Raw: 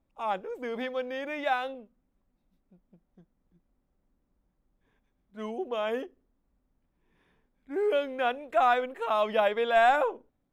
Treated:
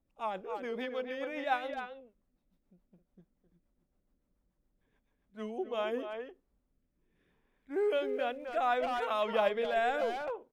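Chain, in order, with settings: 7.95–8.74 s: crackle 590 per s -55 dBFS; speakerphone echo 260 ms, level -6 dB; rotary cabinet horn 7 Hz, later 0.7 Hz, at 5.27 s; trim -2 dB

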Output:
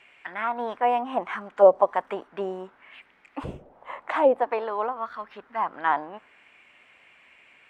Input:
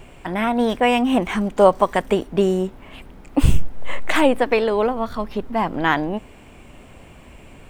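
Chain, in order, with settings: auto-wah 550–2200 Hz, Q 2.2, down, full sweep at -9.5 dBFS

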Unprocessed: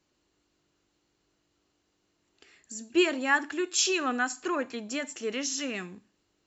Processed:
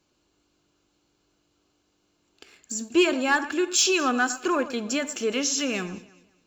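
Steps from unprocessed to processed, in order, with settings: in parallel at 0 dB: compression, threshold -38 dBFS, peak gain reduction 18 dB; on the sum: waveshaping leveller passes 1; band-stop 1.9 kHz, Q 6; echo whose repeats swap between lows and highs 105 ms, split 2.1 kHz, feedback 53%, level -14 dB

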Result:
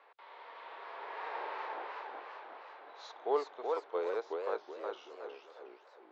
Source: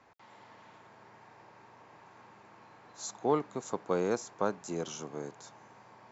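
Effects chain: Doppler pass-by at 1.39 s, 13 m/s, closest 3.3 m; elliptic band-pass 440–3800 Hz, stop band 50 dB; harmonic-percussive split harmonic +4 dB; modulated delay 370 ms, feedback 36%, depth 214 cents, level -3.5 dB; trim +14 dB

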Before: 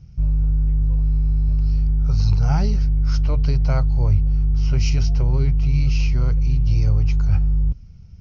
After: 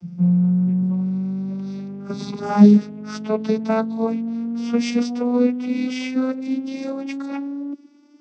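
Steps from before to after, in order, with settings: vocoder on a note that slides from F3, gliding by +9 st; trim +5.5 dB

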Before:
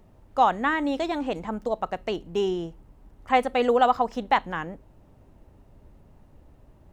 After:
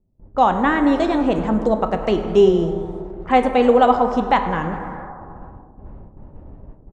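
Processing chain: resampled via 22.05 kHz; gate with hold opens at -44 dBFS; bass shelf 500 Hz +9.5 dB; level rider gain up to 4 dB; on a send: frequency-shifting echo 101 ms, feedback 55%, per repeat +130 Hz, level -21 dB; on the sum: plate-style reverb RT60 2.4 s, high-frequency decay 0.3×, DRR 6.5 dB; level-controlled noise filter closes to 390 Hz, open at -23 dBFS; tape noise reduction on one side only encoder only

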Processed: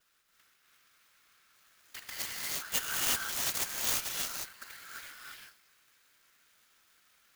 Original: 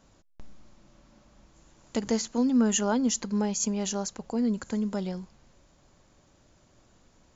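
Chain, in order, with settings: steep high-pass 1.3 kHz 48 dB/octave; vibrato 0.4 Hz 19 cents; whisper effect; gated-style reverb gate 380 ms rising, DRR -5 dB; sampling jitter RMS 0.036 ms; trim -3 dB

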